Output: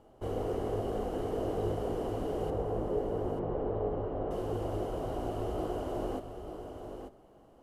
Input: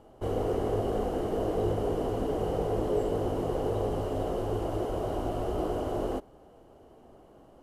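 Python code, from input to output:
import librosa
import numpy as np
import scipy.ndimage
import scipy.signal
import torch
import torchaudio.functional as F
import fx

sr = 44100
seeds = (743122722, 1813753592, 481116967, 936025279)

y = fx.lowpass(x, sr, hz=1600.0, slope=12, at=(2.5, 4.31))
y = y + 10.0 ** (-8.0 / 20.0) * np.pad(y, (int(890 * sr / 1000.0), 0))[:len(y)]
y = y * 10.0 ** (-4.5 / 20.0)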